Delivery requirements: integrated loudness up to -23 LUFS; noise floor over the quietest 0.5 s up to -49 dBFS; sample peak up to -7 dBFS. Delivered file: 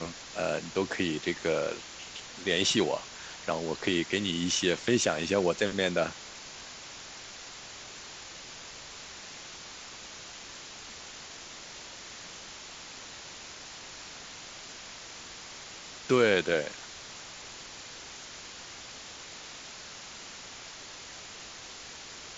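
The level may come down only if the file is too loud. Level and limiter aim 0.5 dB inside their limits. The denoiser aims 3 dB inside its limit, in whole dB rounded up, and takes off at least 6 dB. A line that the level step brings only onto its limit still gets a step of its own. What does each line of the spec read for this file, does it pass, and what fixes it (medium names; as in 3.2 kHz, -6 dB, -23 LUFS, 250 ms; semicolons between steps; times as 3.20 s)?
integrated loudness -33.5 LUFS: pass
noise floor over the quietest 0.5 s -45 dBFS: fail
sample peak -11.5 dBFS: pass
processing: noise reduction 7 dB, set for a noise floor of -45 dBFS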